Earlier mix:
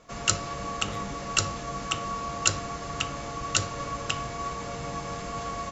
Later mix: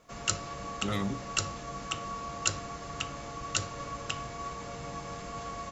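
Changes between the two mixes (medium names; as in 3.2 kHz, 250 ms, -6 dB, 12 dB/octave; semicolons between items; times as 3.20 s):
speech +8.5 dB; background -5.5 dB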